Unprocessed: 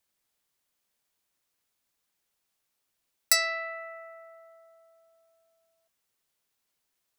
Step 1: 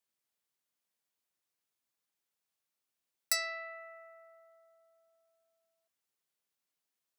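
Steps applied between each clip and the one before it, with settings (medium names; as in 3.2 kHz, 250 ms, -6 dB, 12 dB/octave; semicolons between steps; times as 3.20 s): high-pass 100 Hz; trim -8.5 dB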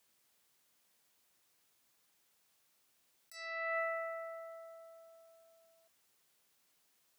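compressor with a negative ratio -48 dBFS, ratio -1; trim +6.5 dB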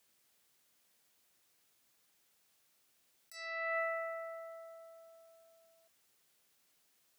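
peaking EQ 990 Hz -2.5 dB 0.56 oct; trim +1 dB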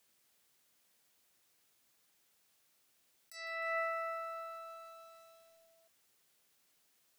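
bit-crushed delay 154 ms, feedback 80%, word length 10-bit, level -12 dB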